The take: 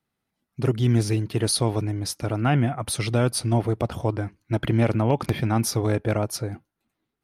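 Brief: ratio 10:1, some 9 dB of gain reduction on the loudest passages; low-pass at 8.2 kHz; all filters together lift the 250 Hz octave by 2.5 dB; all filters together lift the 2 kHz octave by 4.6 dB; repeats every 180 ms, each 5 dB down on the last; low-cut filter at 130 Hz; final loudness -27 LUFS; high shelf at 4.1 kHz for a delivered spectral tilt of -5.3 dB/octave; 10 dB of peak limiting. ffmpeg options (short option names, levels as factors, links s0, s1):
-af "highpass=130,lowpass=8200,equalizer=f=250:t=o:g=3.5,equalizer=f=2000:t=o:g=7.5,highshelf=f=4100:g=-7,acompressor=threshold=0.0631:ratio=10,alimiter=limit=0.0944:level=0:latency=1,aecho=1:1:180|360|540|720|900|1080|1260:0.562|0.315|0.176|0.0988|0.0553|0.031|0.0173,volume=1.5"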